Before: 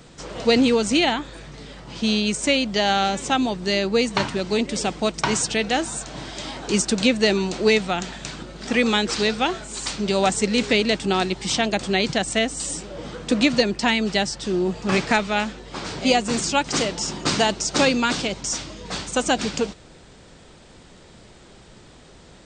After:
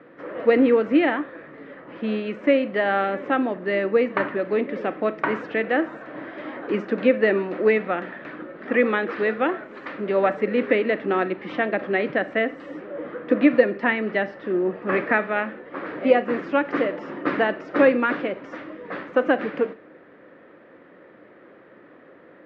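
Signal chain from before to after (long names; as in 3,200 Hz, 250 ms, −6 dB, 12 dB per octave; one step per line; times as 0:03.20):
loudspeaker in its box 260–2,100 Hz, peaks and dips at 300 Hz +9 dB, 530 Hz +8 dB, 850 Hz −5 dB, 1,200 Hz +4 dB, 1,800 Hz +7 dB
four-comb reverb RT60 0.41 s, combs from 29 ms, DRR 14.5 dB
level −2 dB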